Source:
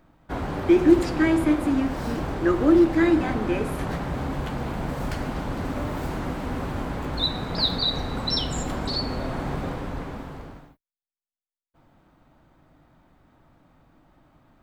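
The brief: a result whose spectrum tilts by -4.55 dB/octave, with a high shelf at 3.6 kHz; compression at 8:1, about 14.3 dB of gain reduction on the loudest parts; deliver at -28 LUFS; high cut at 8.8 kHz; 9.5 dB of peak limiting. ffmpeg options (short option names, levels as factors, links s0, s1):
-af "lowpass=8800,highshelf=f=3600:g=4,acompressor=threshold=0.0562:ratio=8,volume=2.11,alimiter=limit=0.106:level=0:latency=1"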